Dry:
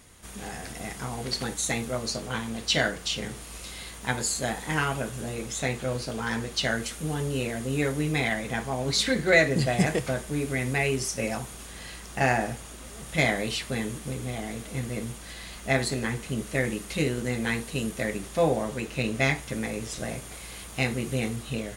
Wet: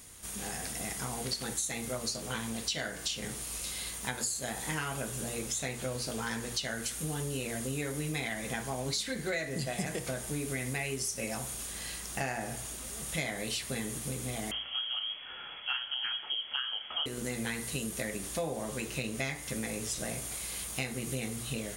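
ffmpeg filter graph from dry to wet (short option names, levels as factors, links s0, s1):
-filter_complex "[0:a]asettb=1/sr,asplit=3[s0][s1][s2];[s0]atrim=end=14.514[s3];[s1]atrim=start=14.51:end=17.06,asetpts=PTS-STARTPTS,afade=t=in:d=0.004:c=qsin,afade=t=out:st=2.546:d=0.004:c=qsin,highpass=58,lowpass=f=2900:t=q:w=0.5098,lowpass=f=2900:t=q:w=0.6013,lowpass=f=2900:t=q:w=0.9,lowpass=f=2900:t=q:w=2.563,afreqshift=-3400[s4];[s2]atrim=start=17.056[s5];[s3][s4]acrossfade=d=0.004:c1=hsin:c2=qsin[s6];[s6][s5]acrossfade=d=0.004:c1=qsin:c2=hsin,highshelf=f=5200:g=11,bandreject=f=59.95:t=h:w=4,bandreject=f=119.9:t=h:w=4,bandreject=f=179.85:t=h:w=4,bandreject=f=239.8:t=h:w=4,bandreject=f=299.75:t=h:w=4,bandreject=f=359.7:t=h:w=4,bandreject=f=419.65:t=h:w=4,bandreject=f=479.6:t=h:w=4,bandreject=f=539.55:t=h:w=4,bandreject=f=599.5:t=h:w=4,bandreject=f=659.45:t=h:w=4,bandreject=f=719.4:t=h:w=4,bandreject=f=779.35:t=h:w=4,bandreject=f=839.3:t=h:w=4,bandreject=f=899.25:t=h:w=4,bandreject=f=959.2:t=h:w=4,bandreject=f=1019.15:t=h:w=4,bandreject=f=1079.1:t=h:w=4,bandreject=f=1139.05:t=h:w=4,bandreject=f=1199:t=h:w=4,bandreject=f=1258.95:t=h:w=4,bandreject=f=1318.9:t=h:w=4,bandreject=f=1378.85:t=h:w=4,bandreject=f=1438.8:t=h:w=4,bandreject=f=1498.75:t=h:w=4,bandreject=f=1558.7:t=h:w=4,bandreject=f=1618.65:t=h:w=4,bandreject=f=1678.6:t=h:w=4,bandreject=f=1738.55:t=h:w=4,bandreject=f=1798.5:t=h:w=4,bandreject=f=1858.45:t=h:w=4,bandreject=f=1918.4:t=h:w=4,bandreject=f=1978.35:t=h:w=4,bandreject=f=2038.3:t=h:w=4,bandreject=f=2098.25:t=h:w=4,bandreject=f=2158.2:t=h:w=4,bandreject=f=2218.15:t=h:w=4,acompressor=threshold=0.0355:ratio=6,volume=0.75"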